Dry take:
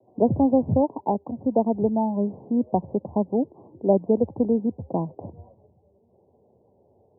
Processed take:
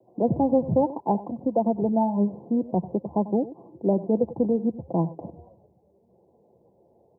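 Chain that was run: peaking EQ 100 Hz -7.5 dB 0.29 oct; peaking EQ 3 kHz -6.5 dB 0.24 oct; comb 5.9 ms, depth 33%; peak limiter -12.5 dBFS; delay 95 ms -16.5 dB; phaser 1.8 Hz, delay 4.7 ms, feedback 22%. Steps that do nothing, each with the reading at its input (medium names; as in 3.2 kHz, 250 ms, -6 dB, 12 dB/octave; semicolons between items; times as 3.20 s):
peaking EQ 3 kHz: input has nothing above 1 kHz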